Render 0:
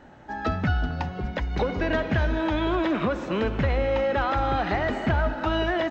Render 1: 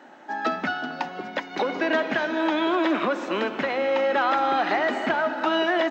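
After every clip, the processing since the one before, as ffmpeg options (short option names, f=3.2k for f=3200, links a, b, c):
-af "highpass=f=270:w=0.5412,highpass=f=270:w=1.3066,equalizer=f=450:t=o:w=0.51:g=-5.5,volume=4dB"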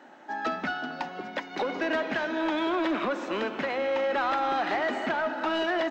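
-af "asoftclip=type=tanh:threshold=-17dB,volume=-3dB"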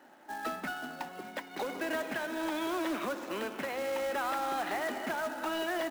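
-af "acrusher=bits=3:mode=log:mix=0:aa=0.000001,volume=-6.5dB"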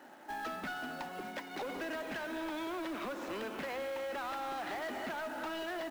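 -af "acompressor=threshold=-36dB:ratio=6,asoftclip=type=tanh:threshold=-37.5dB,volume=3dB"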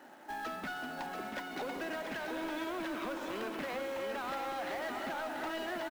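-af "aecho=1:1:686:0.531"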